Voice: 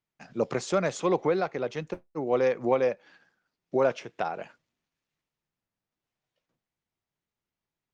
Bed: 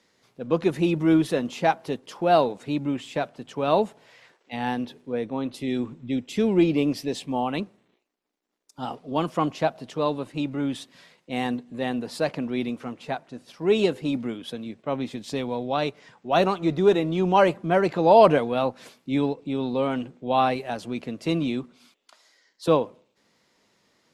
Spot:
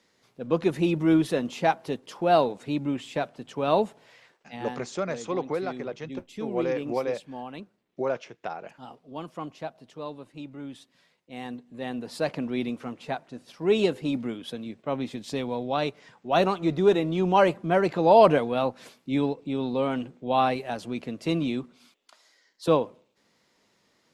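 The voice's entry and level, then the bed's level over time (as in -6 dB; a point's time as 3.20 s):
4.25 s, -4.0 dB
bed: 4.15 s -1.5 dB
4.89 s -12 dB
11.26 s -12 dB
12.32 s -1.5 dB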